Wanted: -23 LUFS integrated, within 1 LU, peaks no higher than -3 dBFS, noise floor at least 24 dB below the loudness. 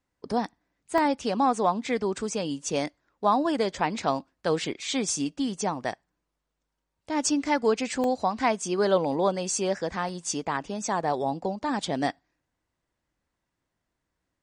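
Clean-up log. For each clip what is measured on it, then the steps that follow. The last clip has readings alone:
dropouts 3; longest dropout 1.2 ms; loudness -27.5 LUFS; peak level -10.0 dBFS; loudness target -23.0 LUFS
-> interpolate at 0.98/8.04/10.09 s, 1.2 ms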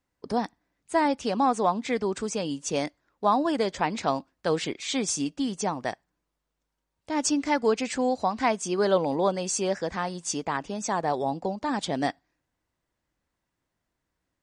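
dropouts 0; loudness -27.5 LUFS; peak level -10.0 dBFS; loudness target -23.0 LUFS
-> trim +4.5 dB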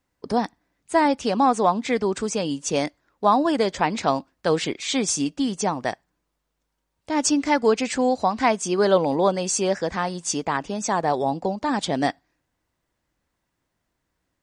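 loudness -23.0 LUFS; peak level -5.5 dBFS; noise floor -78 dBFS

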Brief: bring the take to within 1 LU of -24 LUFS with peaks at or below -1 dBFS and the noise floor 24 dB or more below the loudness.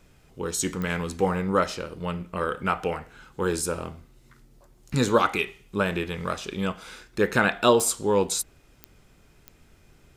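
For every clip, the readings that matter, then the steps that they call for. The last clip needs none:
clicks found 4; loudness -26.0 LUFS; peak level -5.5 dBFS; loudness target -24.0 LUFS
-> de-click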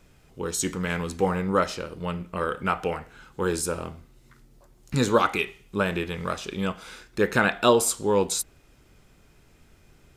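clicks found 0; loudness -26.0 LUFS; peak level -5.5 dBFS; loudness target -24.0 LUFS
-> trim +2 dB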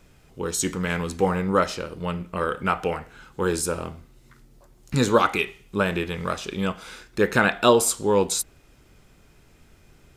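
loudness -24.0 LUFS; peak level -3.5 dBFS; noise floor -56 dBFS

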